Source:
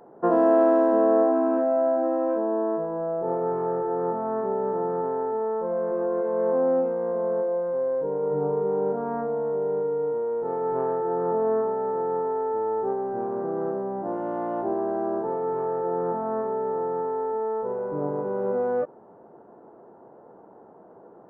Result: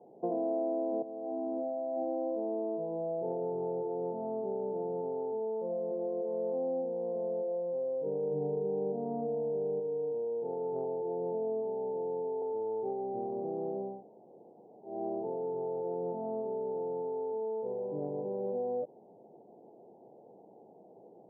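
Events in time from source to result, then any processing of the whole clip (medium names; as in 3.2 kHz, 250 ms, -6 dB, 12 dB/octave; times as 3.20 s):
1.02–3.88 s: compressor with a negative ratio -24 dBFS, ratio -0.5
8.06–9.80 s: bass shelf 430 Hz +6.5 dB
10.84–12.42 s: elliptic low-pass 1.1 kHz
13.93–14.94 s: room tone, crossfade 0.24 s
whole clip: Chebyshev band-pass 110–800 Hz, order 4; compression 2.5:1, threshold -27 dBFS; trim -5.5 dB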